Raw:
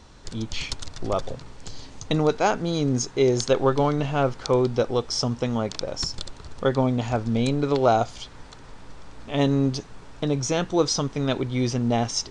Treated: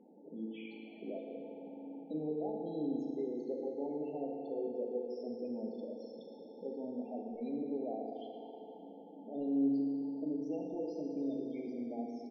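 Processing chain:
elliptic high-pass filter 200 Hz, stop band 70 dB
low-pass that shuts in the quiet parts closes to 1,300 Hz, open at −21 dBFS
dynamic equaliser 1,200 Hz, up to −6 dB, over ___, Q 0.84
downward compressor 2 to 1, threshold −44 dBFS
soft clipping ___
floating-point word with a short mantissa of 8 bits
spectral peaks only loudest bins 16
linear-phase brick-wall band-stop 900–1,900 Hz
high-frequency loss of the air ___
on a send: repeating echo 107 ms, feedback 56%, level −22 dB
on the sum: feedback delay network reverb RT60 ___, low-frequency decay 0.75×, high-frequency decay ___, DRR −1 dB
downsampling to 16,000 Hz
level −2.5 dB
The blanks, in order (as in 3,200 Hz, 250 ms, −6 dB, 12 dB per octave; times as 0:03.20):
−38 dBFS, −30 dBFS, 470 metres, 3.4 s, 0.8×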